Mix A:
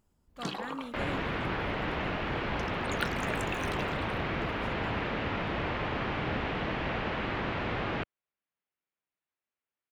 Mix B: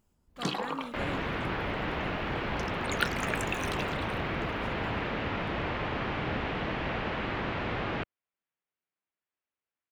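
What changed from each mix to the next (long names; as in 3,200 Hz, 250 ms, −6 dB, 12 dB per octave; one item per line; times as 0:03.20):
first sound +4.5 dB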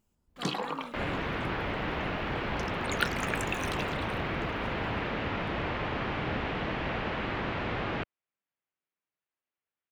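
speech −4.0 dB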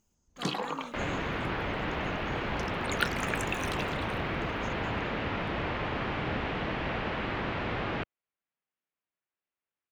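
speech: add low-pass with resonance 6,400 Hz, resonance Q 15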